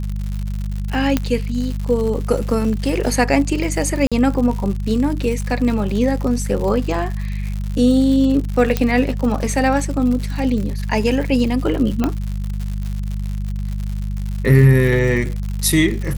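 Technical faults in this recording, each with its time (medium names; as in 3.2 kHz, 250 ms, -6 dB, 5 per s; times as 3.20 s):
crackle 130 per s -25 dBFS
hum 50 Hz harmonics 4 -23 dBFS
1.17 s: pop -3 dBFS
4.07–4.12 s: dropout 46 ms
8.77 s: pop -4 dBFS
12.04 s: pop -6 dBFS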